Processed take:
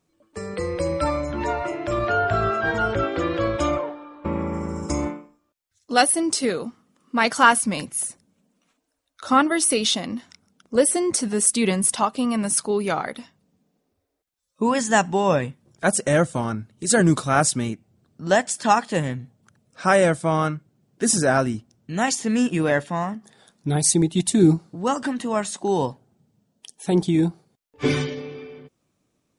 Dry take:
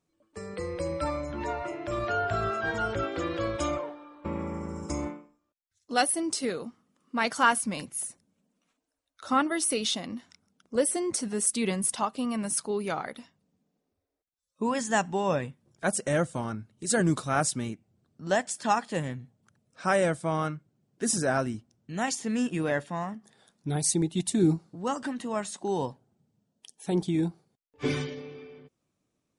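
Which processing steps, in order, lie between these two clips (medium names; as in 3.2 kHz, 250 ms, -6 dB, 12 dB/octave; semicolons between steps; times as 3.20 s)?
1.93–4.53 s: treble shelf 6.1 kHz -10.5 dB; trim +7.5 dB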